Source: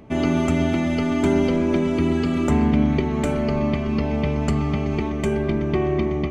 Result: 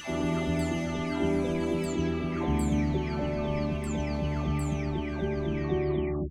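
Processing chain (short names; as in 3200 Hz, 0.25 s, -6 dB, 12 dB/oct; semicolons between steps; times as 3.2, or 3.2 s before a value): spectral delay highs early, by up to 0.646 s; high shelf 5600 Hz +7.5 dB; gain -6 dB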